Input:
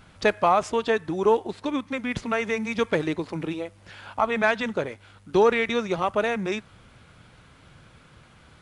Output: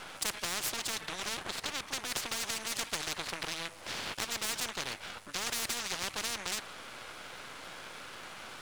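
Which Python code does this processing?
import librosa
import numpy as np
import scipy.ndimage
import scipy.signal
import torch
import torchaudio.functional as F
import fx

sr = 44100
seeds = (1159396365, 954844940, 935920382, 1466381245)

y = scipy.signal.sosfilt(scipy.signal.butter(2, 480.0, 'highpass', fs=sr, output='sos'), x)
y = np.maximum(y, 0.0)
y = fx.spectral_comp(y, sr, ratio=10.0)
y = y * librosa.db_to_amplitude(-6.5)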